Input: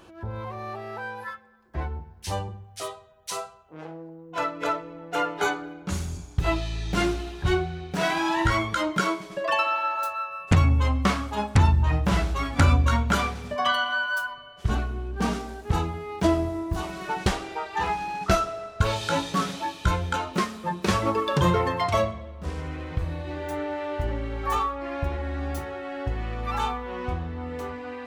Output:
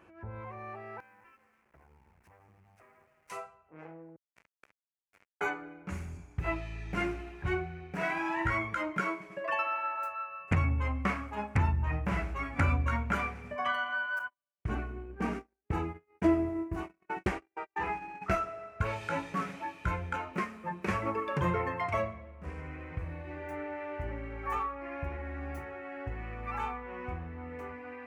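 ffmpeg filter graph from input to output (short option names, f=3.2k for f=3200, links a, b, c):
-filter_complex "[0:a]asettb=1/sr,asplit=3[a][b][c];[a]atrim=end=1.004[d];[b]atrim=start=1:end=3.3,asetpts=PTS-STARTPTS,afade=t=in:d=0.004:c=qsin,afade=t=out:st=2.296:d=0.004:c=qsin,highshelf=f=1.8k:t=q:w=1.5:g=-12,acompressor=threshold=-44dB:ratio=10:attack=3.2:release=140:knee=1:detection=peak,acrusher=bits=7:dc=4:mix=0:aa=0.000001[e];[c]atrim=start=3.296[f];[d][e]acrossfade=d=0.004:c1=hsin:c2=qsin[g];[g][f]acrossfade=d=0.004:c1=qsin:c2=hsin,asettb=1/sr,asplit=3[h][i][j];[h]atrim=end=4.164[k];[i]atrim=start=4.16:end=5.41,asetpts=PTS-STARTPTS,afade=t=in:d=0.004:c=qsin,afade=t=out:st=1.246:d=0.004:c=qsin,asplit=2[l][m];[m]adelay=22,volume=-9.5dB[n];[l][n]amix=inputs=2:normalize=0,atrim=end_sample=55125,acrossover=split=210|1800[o][p][q];[o]acompressor=threshold=-48dB:ratio=4[r];[p]acompressor=threshold=-39dB:ratio=4[s];[q]acompressor=threshold=-41dB:ratio=4[t];[r][s][t]amix=inputs=3:normalize=0,acrusher=bits=3:mix=0:aa=0.5[u];[j]atrim=start=5.406[v];[k][u]acrossfade=d=0.004:c1=hsin:c2=qsin[w];[w][v]acrossfade=d=0.004:c1=qsin:c2=hsin,asettb=1/sr,asplit=3[x][y][z];[x]atrim=end=14.194[aa];[y]atrim=start=14.19:end=18.22,asetpts=PTS-STARTPTS,afade=t=in:d=0.004:c=qsin,afade=t=out:st=4.026:d=0.004:c=qsin,agate=range=-45dB:threshold=-32dB:ratio=16:release=100:detection=peak,equalizer=f=330:w=2.4:g=7[ab];[z]atrim=start=18.216[ac];[aa][ab]acrossfade=d=0.004:c1=hsin:c2=qsin[ad];[ad][ac]acrossfade=d=0.004:c1=qsin:c2=hsin,highpass=45,highshelf=f=2.9k:t=q:w=3:g=-7.5,volume=-9dB"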